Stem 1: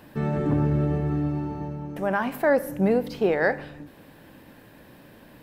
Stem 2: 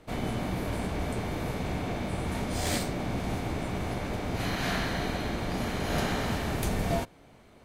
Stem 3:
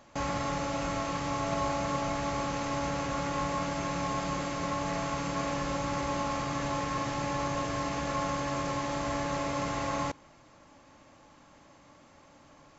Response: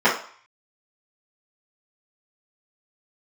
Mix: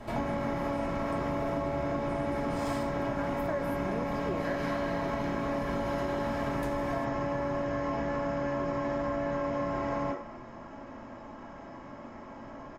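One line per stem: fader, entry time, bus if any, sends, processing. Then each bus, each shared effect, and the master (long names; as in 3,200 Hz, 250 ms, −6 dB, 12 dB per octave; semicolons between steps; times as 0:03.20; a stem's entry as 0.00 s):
−10.5 dB, 1.05 s, no send, no processing
+2.0 dB, 0.00 s, send −15 dB, downward compressor 5 to 1, threshold −41 dBFS, peak gain reduction 15.5 dB
−3.5 dB, 0.00 s, send −8 dB, spectral tilt −2.5 dB per octave; downward compressor, threshold −33 dBFS, peak gain reduction 10 dB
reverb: on, RT60 0.50 s, pre-delay 3 ms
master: comb filter 3.1 ms, depth 33%; downward compressor, threshold −28 dBFS, peak gain reduction 7 dB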